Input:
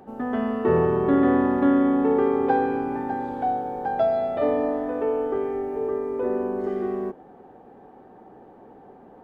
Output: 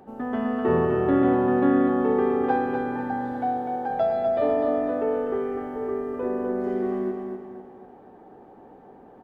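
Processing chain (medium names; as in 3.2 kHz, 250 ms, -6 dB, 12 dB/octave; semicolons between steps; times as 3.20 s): 3.32–3.88 s: high-pass 78 Hz -> 260 Hz; feedback delay 250 ms, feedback 42%, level -5 dB; trim -2 dB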